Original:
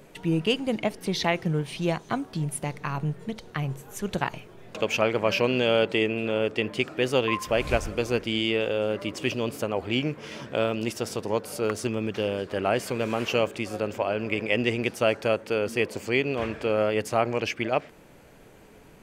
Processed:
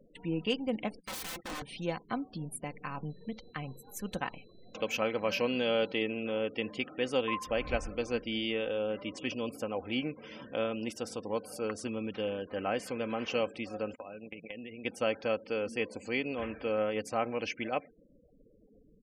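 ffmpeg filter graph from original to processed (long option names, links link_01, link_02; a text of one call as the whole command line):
ffmpeg -i in.wav -filter_complex "[0:a]asettb=1/sr,asplit=3[link_01][link_02][link_03];[link_01]atrim=end=1.004[link_04];[link_02]atrim=start=1:end=1.62,asetpts=PTS-STARTPTS,afade=type=in:duration=0.004:curve=qsin,afade=type=out:start_time=0.616:duration=0.004:curve=qsin,bandreject=frequency=50:width_type=h:width=6,bandreject=frequency=100:width_type=h:width=6,bandreject=frequency=150:width_type=h:width=6,bandreject=frequency=200:width_type=h:width=6,bandreject=frequency=250:width_type=h:width=6,bandreject=frequency=300:width_type=h:width=6,bandreject=frequency=350:width_type=h:width=6,bandreject=frequency=400:width_type=h:width=6,agate=range=-12dB:threshold=-37dB:ratio=16:release=100:detection=peak,aeval=exprs='(mod(22.4*val(0)+1,2)-1)/22.4':channel_layout=same[link_05];[link_03]atrim=start=1.616[link_06];[link_04][link_05]acrossfade=duration=0.004:curve1=hsin:curve2=qsin[link_07];[link_07][link_06]acrossfade=duration=0.004:curve1=qsin:curve2=hsin,asettb=1/sr,asplit=3[link_08][link_09][link_10];[link_08]atrim=end=3.104[link_11];[link_09]atrim=start=3.1:end=6.02,asetpts=PTS-STARTPTS,afade=type=in:duration=0.004:curve=qsin,afade=type=out:start_time=2.916:duration=0.004:curve=qsin,highshelf=frequency=11000:gain=11,aeval=exprs='val(0)+0.002*sin(2*PI*4000*n/s)':channel_layout=same[link_12];[link_10]atrim=start=6.016[link_13];[link_11][link_12]acrossfade=duration=0.004:curve1=hsin:curve2=qsin[link_14];[link_14][link_13]acrossfade=duration=0.004:curve1=qsin:curve2=hsin,asettb=1/sr,asplit=3[link_15][link_16][link_17];[link_15]atrim=end=13.954[link_18];[link_16]atrim=start=13.95:end=14.85,asetpts=PTS-STARTPTS,afade=type=in:duration=0.004:curve=qsin,afade=type=out:start_time=0.896:duration=0.004:curve=qsin,agate=range=-21dB:threshold=-30dB:ratio=16:release=100:detection=peak,equalizer=frequency=170:width=7.8:gain=13.5,acompressor=threshold=-31dB:ratio=20:attack=3.2:release=140:knee=1:detection=peak[link_19];[link_17]atrim=start=14.846[link_20];[link_18][link_19]acrossfade=duration=0.004:curve1=hsin:curve2=qsin[link_21];[link_21][link_20]acrossfade=duration=0.004:curve1=qsin:curve2=hsin,afftfilt=real='re*gte(hypot(re,im),0.00891)':imag='im*gte(hypot(re,im),0.00891)':win_size=1024:overlap=0.75,aecho=1:1:3.9:0.49,volume=-8.5dB" out.wav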